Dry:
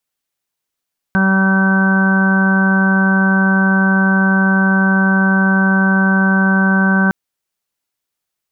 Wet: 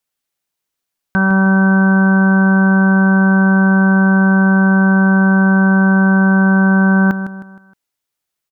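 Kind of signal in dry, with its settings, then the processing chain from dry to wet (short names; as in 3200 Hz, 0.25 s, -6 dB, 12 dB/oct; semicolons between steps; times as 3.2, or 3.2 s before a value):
steady additive tone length 5.96 s, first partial 192 Hz, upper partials -15.5/-15.5/-14/-14/-14.5/-19/-4 dB, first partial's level -11.5 dB
feedback echo 0.156 s, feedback 41%, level -11 dB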